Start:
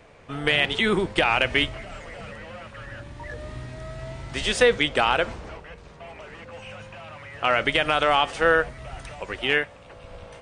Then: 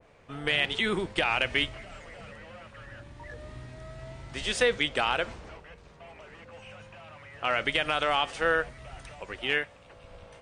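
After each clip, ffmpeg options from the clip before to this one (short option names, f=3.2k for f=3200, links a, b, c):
-af "adynamicequalizer=threshold=0.0355:dfrequency=1600:dqfactor=0.7:tfrequency=1600:tqfactor=0.7:attack=5:release=100:ratio=0.375:range=1.5:mode=boostabove:tftype=highshelf,volume=-7dB"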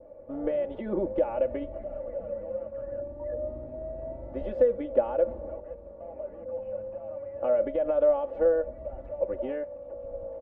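-af "aecho=1:1:3.5:0.78,acompressor=threshold=-26dB:ratio=6,lowpass=f=560:t=q:w=5.3"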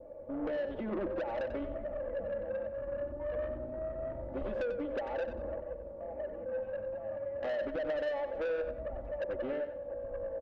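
-af "acompressor=threshold=-26dB:ratio=3,asoftclip=type=tanh:threshold=-31.5dB,aecho=1:1:93|186|279:0.335|0.0938|0.0263"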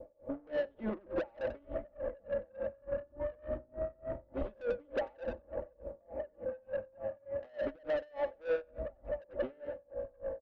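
-af "aeval=exprs='val(0)*pow(10,-30*(0.5-0.5*cos(2*PI*3.4*n/s))/20)':c=same,volume=4dB"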